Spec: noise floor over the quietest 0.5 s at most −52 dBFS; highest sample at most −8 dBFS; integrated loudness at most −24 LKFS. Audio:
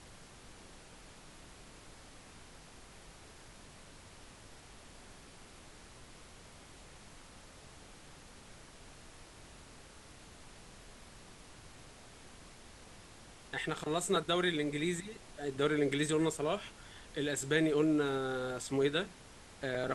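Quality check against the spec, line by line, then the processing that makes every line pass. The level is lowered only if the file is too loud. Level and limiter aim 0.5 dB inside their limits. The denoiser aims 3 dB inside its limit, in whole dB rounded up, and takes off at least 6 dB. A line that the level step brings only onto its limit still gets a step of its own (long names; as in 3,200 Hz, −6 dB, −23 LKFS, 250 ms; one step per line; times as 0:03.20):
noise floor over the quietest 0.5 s −55 dBFS: in spec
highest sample −17.0 dBFS: in spec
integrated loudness −34.0 LKFS: in spec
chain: no processing needed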